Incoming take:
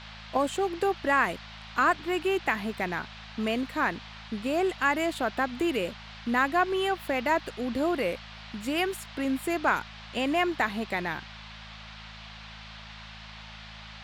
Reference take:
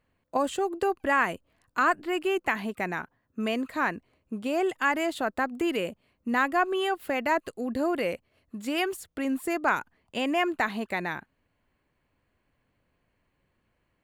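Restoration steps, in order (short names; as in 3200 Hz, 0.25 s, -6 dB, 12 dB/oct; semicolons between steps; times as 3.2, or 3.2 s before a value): de-hum 54 Hz, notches 4; noise print and reduce 29 dB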